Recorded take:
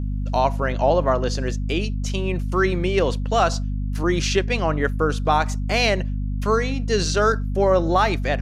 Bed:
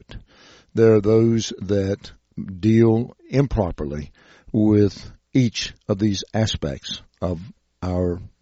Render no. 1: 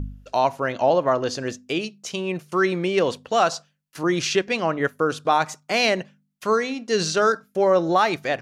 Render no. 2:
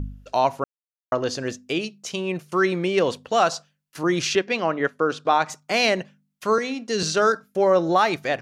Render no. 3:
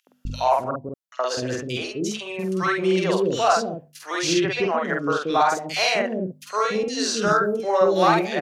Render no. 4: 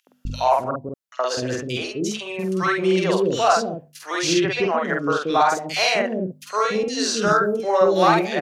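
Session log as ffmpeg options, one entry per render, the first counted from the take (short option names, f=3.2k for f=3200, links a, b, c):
-af "bandreject=f=50:t=h:w=4,bandreject=f=100:t=h:w=4,bandreject=f=150:t=h:w=4,bandreject=f=200:t=h:w=4,bandreject=f=250:t=h:w=4"
-filter_complex "[0:a]asettb=1/sr,asplit=3[a][b][c];[a]atrim=end=4.354[d];[b]atrim=start=4.35:end=5.5,asetpts=PTS-STARTPTS,afade=t=in:d=0.004:c=qsin,afade=t=out:st=1.146:d=0.004:c=qsin,highpass=170,lowpass=5.7k[e];[c]atrim=start=5.496[f];[d][e]acrossfade=d=0.004:c1=hsin:c2=qsin[g];[g][f]acrossfade=d=0.004:c1=qsin:c2=hsin,asettb=1/sr,asplit=3[h][i][j];[h]atrim=end=6.584[k];[i]atrim=start=6.58:end=7.03,asetpts=PTS-STARTPTS,afade=t=in:d=0.004:c=qsin,afade=t=out:st=0.446:d=0.004:c=qsin,acrossover=split=300|3000[l][m][n];[m]acompressor=threshold=-24dB:ratio=6:attack=3.2:release=140:knee=2.83:detection=peak[o];[l][o][n]amix=inputs=3:normalize=0[p];[j]atrim=start=7.026[q];[k][p]acrossfade=d=0.004:c1=hsin:c2=qsin[r];[r][q]acrossfade=d=0.004:c1=qsin:c2=hsin,asplit=3[s][t][u];[s]atrim=end=0.64,asetpts=PTS-STARTPTS,afade=t=out:st=0.636:d=0.004:c=hsin[v];[t]atrim=start=0.64:end=1.12,asetpts=PTS-STARTPTS,volume=0[w];[u]atrim=start=1.12,asetpts=PTS-STARTPTS,afade=t=in:d=0.004:c=hsin[x];[v][w][x]concat=n=3:v=0:a=1"
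-filter_complex "[0:a]asplit=2[a][b];[b]adelay=48,volume=-2dB[c];[a][c]amix=inputs=2:normalize=0,acrossover=split=470|2300[d][e][f];[e]adelay=70[g];[d]adelay=250[h];[h][g][f]amix=inputs=3:normalize=0"
-af "volume=1.5dB"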